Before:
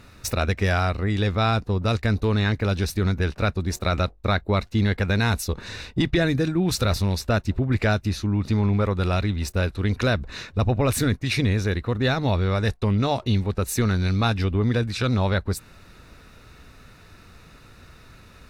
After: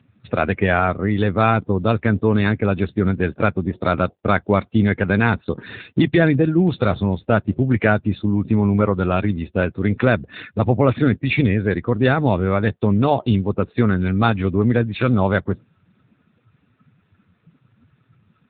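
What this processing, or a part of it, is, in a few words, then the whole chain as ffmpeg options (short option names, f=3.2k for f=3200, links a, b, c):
mobile call with aggressive noise cancelling: -af "highpass=120,afftdn=nr=20:nf=-38,volume=7dB" -ar 8000 -c:a libopencore_amrnb -b:a 7950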